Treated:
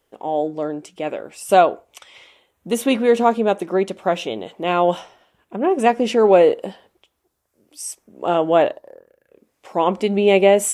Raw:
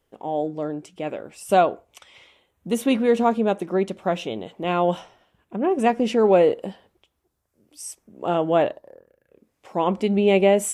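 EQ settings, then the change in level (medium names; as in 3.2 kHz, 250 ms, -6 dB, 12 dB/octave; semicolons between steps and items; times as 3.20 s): tone controls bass -7 dB, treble +1 dB; +4.5 dB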